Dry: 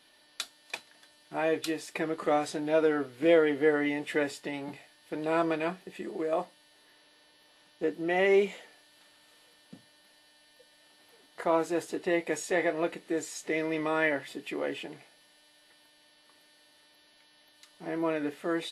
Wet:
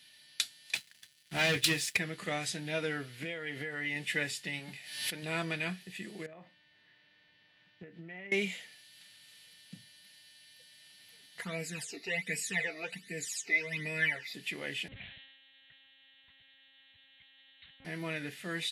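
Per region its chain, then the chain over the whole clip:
0:00.75–0:01.97: leveller curve on the samples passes 3 + expander for the loud parts, over −37 dBFS
0:03.07–0:03.96: parametric band 1,100 Hz +4 dB 2.4 octaves + downward compressor, threshold −29 dBFS
0:04.59–0:05.23: low-shelf EQ 150 Hz −9 dB + background raised ahead of every attack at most 65 dB per second
0:06.26–0:08.32: low-pass filter 1,900 Hz + double-tracking delay 30 ms −13.5 dB + downward compressor 16 to 1, threshold −37 dBFS
0:11.42–0:14.34: all-pass phaser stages 12, 1.3 Hz, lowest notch 160–1,200 Hz + comb filter 4.4 ms, depth 61%
0:14.88–0:17.85: one-pitch LPC vocoder at 8 kHz 270 Hz + level that may fall only so fast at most 44 dB per second
whole clip: high-pass filter 84 Hz; flat-topped bell 590 Hz −16 dB 2.7 octaves; level +4.5 dB

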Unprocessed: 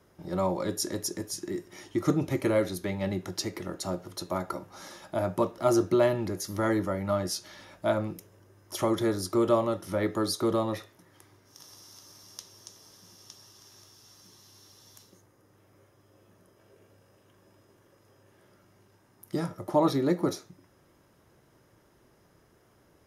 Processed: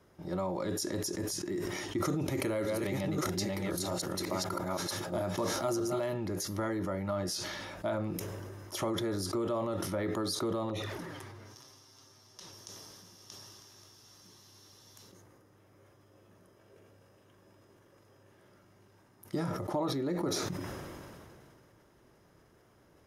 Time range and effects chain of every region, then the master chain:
0:02.01–0:06.14: delay that plays each chunk backwards 633 ms, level −0.5 dB + high-shelf EQ 4,700 Hz +8 dB + one half of a high-frequency compander decoder only
0:10.69–0:12.53: high-shelf EQ 6,200 Hz −7 dB + flanger swept by the level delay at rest 11.3 ms, full sweep at −31.5 dBFS
whole clip: downward compressor, threshold −30 dBFS; high-shelf EQ 7,600 Hz −4.5 dB; level that may fall only so fast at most 22 dB per second; level −1 dB

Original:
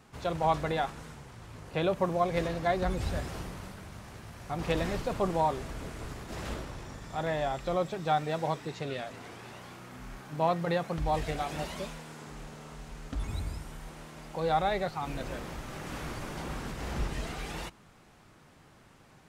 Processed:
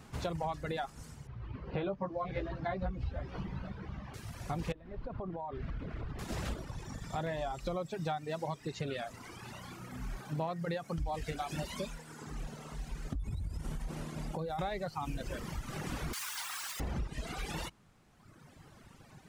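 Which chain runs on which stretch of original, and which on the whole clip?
0:01.27–0:04.14: high-frequency loss of the air 280 metres + double-tracking delay 15 ms −2 dB + single-tap delay 491 ms −13.5 dB
0:04.72–0:06.19: downward compressor 8 to 1, threshold −37 dBFS + high-frequency loss of the air 340 metres
0:13.12–0:14.59: variable-slope delta modulation 64 kbit/s + low-shelf EQ 450 Hz +8 dB + downward compressor 10 to 1, threshold −34 dBFS
0:16.13–0:16.80: high-pass filter 950 Hz 24 dB per octave + high-shelf EQ 2,900 Hz +9 dB + bit-depth reduction 8 bits, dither triangular
whole clip: reverb reduction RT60 1.7 s; bass and treble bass +5 dB, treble +2 dB; downward compressor 6 to 1, threshold −36 dBFS; level +2.5 dB

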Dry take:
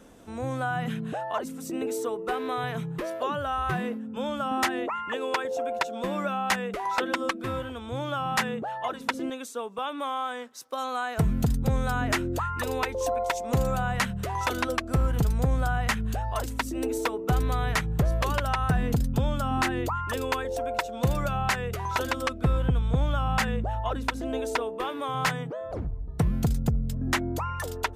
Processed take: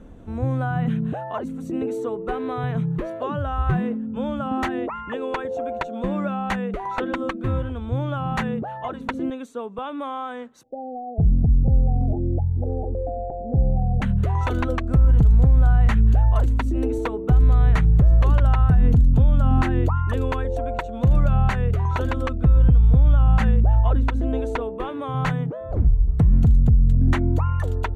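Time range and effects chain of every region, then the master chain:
0:10.63–0:14.02: Chebyshev low-pass filter 840 Hz, order 10 + downward compressor 2.5 to 1, threshold −29 dBFS
whole clip: RIAA equalisation playback; notch filter 5,100 Hz, Q 5.4; brickwall limiter −9 dBFS

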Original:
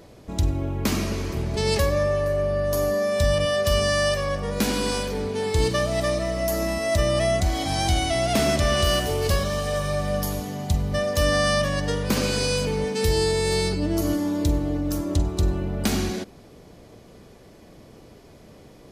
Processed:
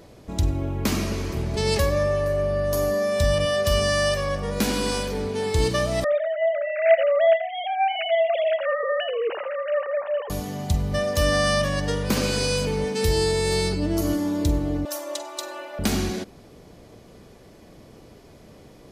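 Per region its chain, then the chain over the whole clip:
0:06.04–0:10.30: three sine waves on the formant tracks + single-tap delay 83 ms −11.5 dB
0:14.85–0:15.79: high-pass filter 550 Hz 24 dB per octave + comb filter 3.4 ms, depth 99%
whole clip: no processing

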